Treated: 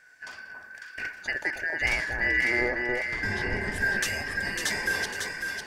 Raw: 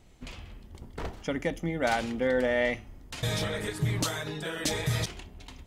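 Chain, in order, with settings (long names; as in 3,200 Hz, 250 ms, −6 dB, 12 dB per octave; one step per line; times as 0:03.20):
band-splitting scrambler in four parts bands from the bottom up 2143
0:02.61–0:03.72: RIAA equalisation playback
on a send: delay that swaps between a low-pass and a high-pass 275 ms, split 1,200 Hz, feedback 68%, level −2 dB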